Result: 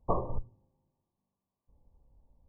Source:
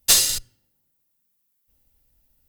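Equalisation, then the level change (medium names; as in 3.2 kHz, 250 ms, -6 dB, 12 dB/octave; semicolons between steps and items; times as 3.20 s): brick-wall FIR low-pass 1.2 kHz; peaking EQ 280 Hz -5 dB 0.31 oct; +5.0 dB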